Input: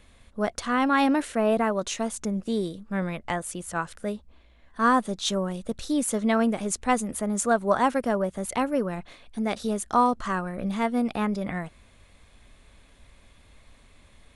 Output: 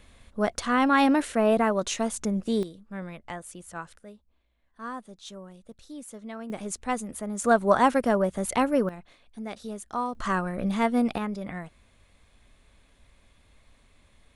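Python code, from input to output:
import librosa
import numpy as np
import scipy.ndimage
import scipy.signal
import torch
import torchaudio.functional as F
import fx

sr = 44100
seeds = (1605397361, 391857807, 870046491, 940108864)

y = fx.gain(x, sr, db=fx.steps((0.0, 1.0), (2.63, -8.5), (3.99, -16.0), (6.5, -5.5), (7.44, 2.0), (8.89, -9.0), (10.15, 1.5), (11.18, -5.0)))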